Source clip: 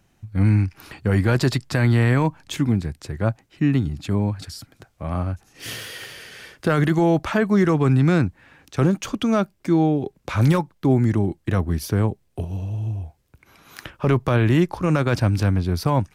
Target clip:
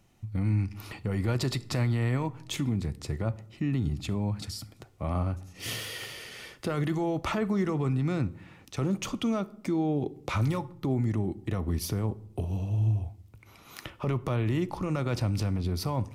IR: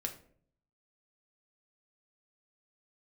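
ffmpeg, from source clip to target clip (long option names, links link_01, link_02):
-filter_complex "[0:a]bandreject=frequency=1600:width=5.4,alimiter=limit=-18.5dB:level=0:latency=1:release=89,asplit=2[link_01][link_02];[1:a]atrim=start_sample=2205,asetrate=29988,aresample=44100[link_03];[link_02][link_03]afir=irnorm=-1:irlink=0,volume=-10.5dB[link_04];[link_01][link_04]amix=inputs=2:normalize=0,volume=-4.5dB"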